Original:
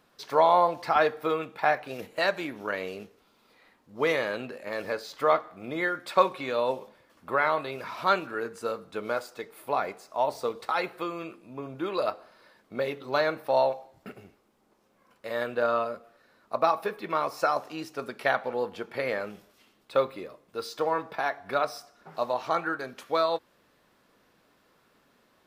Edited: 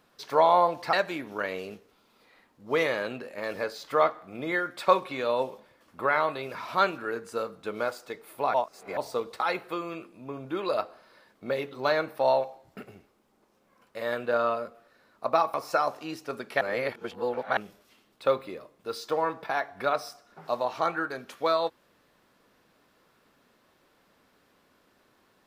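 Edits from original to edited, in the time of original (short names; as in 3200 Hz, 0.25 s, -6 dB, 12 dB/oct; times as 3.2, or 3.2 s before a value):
0.93–2.22 cut
9.83–10.26 reverse
16.83–17.23 cut
18.3–19.26 reverse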